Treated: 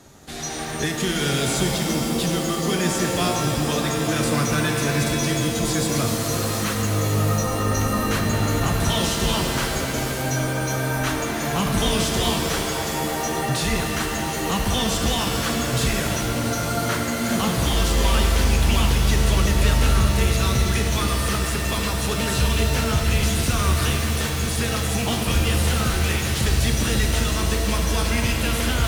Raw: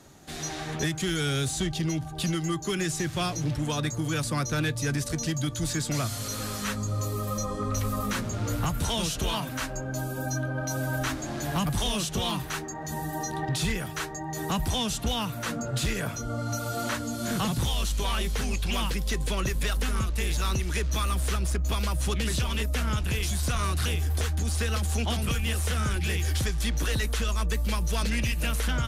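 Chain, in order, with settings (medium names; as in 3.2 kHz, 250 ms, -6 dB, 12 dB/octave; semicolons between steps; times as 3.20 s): pitch-shifted reverb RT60 3.3 s, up +7 st, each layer -2 dB, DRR 2 dB; trim +3.5 dB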